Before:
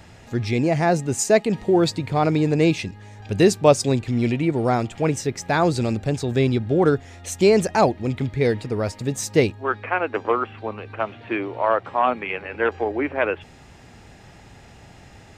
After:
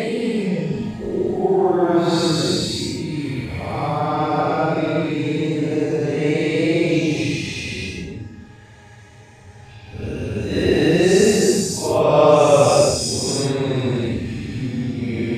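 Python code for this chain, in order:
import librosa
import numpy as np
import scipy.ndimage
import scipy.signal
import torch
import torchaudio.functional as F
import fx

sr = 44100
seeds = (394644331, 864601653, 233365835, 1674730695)

y = fx.spec_dilate(x, sr, span_ms=120)
y = fx.paulstretch(y, sr, seeds[0], factor=5.5, window_s=0.05, from_s=1.43)
y = y * librosa.db_to_amplitude(-4.5)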